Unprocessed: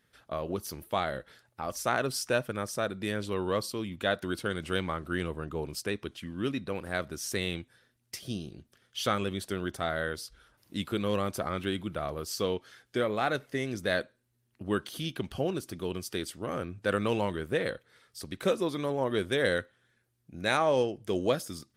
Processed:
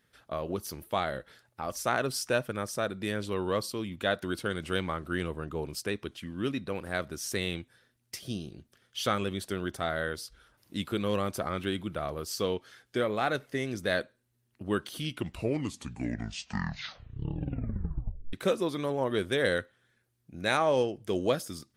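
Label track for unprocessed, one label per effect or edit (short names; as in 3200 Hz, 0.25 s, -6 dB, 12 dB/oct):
14.890000	14.890000	tape stop 3.44 s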